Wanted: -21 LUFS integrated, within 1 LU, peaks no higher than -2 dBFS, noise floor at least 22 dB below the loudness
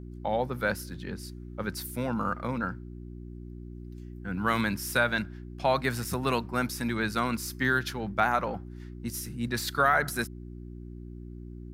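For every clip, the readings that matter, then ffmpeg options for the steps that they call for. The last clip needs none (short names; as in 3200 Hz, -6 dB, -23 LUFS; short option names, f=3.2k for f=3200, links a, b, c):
hum 60 Hz; harmonics up to 360 Hz; hum level -39 dBFS; loudness -29.5 LUFS; peak -11.0 dBFS; loudness target -21.0 LUFS
-> -af "bandreject=f=60:t=h:w=4,bandreject=f=120:t=h:w=4,bandreject=f=180:t=h:w=4,bandreject=f=240:t=h:w=4,bandreject=f=300:t=h:w=4,bandreject=f=360:t=h:w=4"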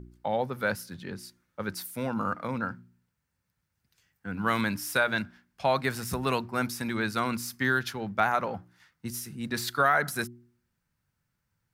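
hum none; loudness -29.5 LUFS; peak -11.0 dBFS; loudness target -21.0 LUFS
-> -af "volume=8.5dB"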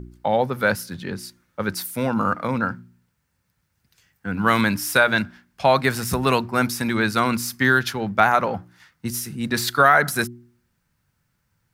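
loudness -21.0 LUFS; peak -2.5 dBFS; noise floor -72 dBFS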